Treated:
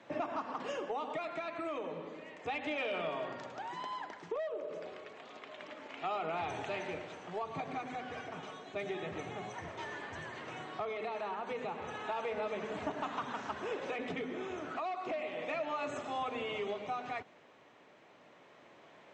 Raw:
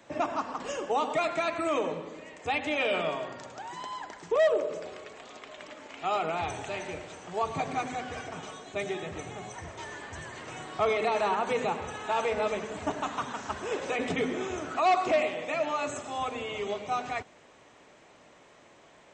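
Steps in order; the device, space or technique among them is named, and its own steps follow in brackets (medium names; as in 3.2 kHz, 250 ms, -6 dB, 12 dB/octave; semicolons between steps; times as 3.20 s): AM radio (band-pass 120–4000 Hz; compression 6:1, threshold -31 dBFS, peak gain reduction 12 dB; saturation -22.5 dBFS, distortion -27 dB; tremolo 0.31 Hz, depth 32%); trim -1 dB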